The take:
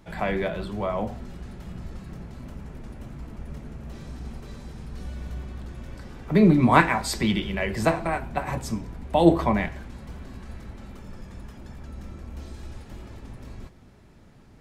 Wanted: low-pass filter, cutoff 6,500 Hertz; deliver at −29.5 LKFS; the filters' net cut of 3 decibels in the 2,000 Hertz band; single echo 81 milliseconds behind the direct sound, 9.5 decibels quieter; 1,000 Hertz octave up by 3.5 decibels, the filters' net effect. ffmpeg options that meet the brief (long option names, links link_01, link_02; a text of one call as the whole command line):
ffmpeg -i in.wav -af "lowpass=6500,equalizer=frequency=1000:width_type=o:gain=5.5,equalizer=frequency=2000:width_type=o:gain=-6,aecho=1:1:81:0.335,volume=-7dB" out.wav